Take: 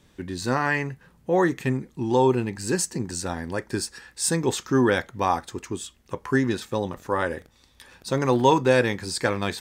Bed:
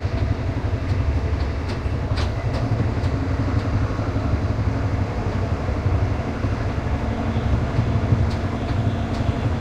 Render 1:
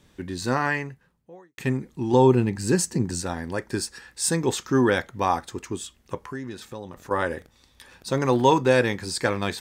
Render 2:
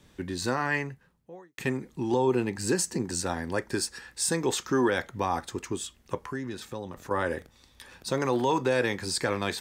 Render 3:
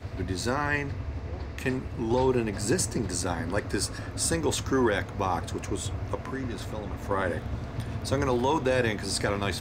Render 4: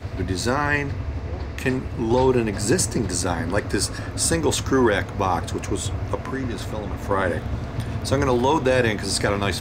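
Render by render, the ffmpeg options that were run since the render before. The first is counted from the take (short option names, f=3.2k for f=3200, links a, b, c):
-filter_complex "[0:a]asettb=1/sr,asplit=3[a][b][c];[a]atrim=end=2.134[d];[b]atrim=start=2.13:end=3.22,asetpts=PTS-STARTPTS,afade=t=in:d=0.004:c=qsin,afade=t=out:st=1.086:d=0.004:c=qsin,equalizer=f=130:w=0.42:g=6[e];[c]atrim=start=3.216[f];[d][e]acrossfade=d=0.004:c1=hsin:c2=qsin[g];[g][f]acrossfade=d=0.004:c1=qsin:c2=hsin,asettb=1/sr,asplit=3[h][i][j];[h]atrim=end=6.204[k];[i]atrim=start=6.2:end=7.11,asetpts=PTS-STARTPTS,afade=t=in:d=0.004:c=qsin,afade=t=out:st=0.906:d=0.004:c=qsin,acompressor=threshold=-40dB:ratio=2:attack=3.2:release=140:knee=1:detection=peak[l];[j]atrim=start=7.106[m];[k][l]acrossfade=d=0.004:c1=hsin:c2=qsin[n];[n][m]acrossfade=d=0.004:c1=qsin:c2=hsin,asplit=2[o][p];[o]atrim=end=1.58,asetpts=PTS-STARTPTS,afade=t=out:st=0.65:d=0.93:c=qua[q];[p]atrim=start=1.58,asetpts=PTS-STARTPTS,afade=t=in:d=0.004:c=hsin[r];[q][r]concat=n=2:v=0:a=1"
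-filter_complex "[0:a]acrossover=split=290[a][b];[a]acompressor=threshold=-34dB:ratio=6[c];[b]alimiter=limit=-17dB:level=0:latency=1:release=53[d];[c][d]amix=inputs=2:normalize=0"
-filter_complex "[1:a]volume=-13.5dB[a];[0:a][a]amix=inputs=2:normalize=0"
-af "volume=6dB"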